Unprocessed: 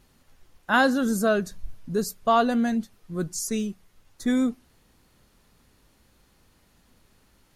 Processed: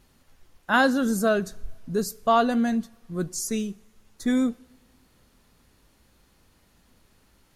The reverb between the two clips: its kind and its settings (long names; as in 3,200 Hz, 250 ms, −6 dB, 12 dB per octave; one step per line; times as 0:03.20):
coupled-rooms reverb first 0.56 s, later 2.5 s, from −19 dB, DRR 19.5 dB